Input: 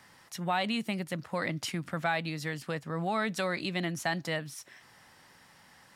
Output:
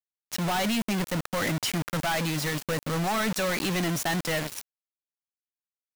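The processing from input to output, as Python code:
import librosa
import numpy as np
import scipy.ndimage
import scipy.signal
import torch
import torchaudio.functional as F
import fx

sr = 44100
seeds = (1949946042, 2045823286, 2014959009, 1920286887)

y = fx.quant_companded(x, sr, bits=2)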